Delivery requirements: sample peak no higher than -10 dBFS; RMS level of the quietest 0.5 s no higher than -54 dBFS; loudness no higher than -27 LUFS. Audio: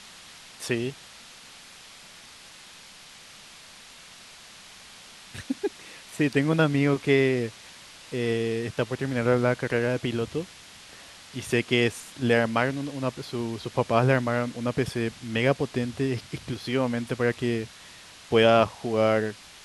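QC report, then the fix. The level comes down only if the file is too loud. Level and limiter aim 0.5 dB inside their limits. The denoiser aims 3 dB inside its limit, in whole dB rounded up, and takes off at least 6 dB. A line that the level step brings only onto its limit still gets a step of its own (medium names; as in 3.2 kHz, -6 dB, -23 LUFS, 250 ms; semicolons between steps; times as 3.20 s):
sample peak -6.0 dBFS: fail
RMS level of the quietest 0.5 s -48 dBFS: fail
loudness -26.0 LUFS: fail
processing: noise reduction 8 dB, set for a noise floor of -48 dBFS; trim -1.5 dB; peak limiter -10.5 dBFS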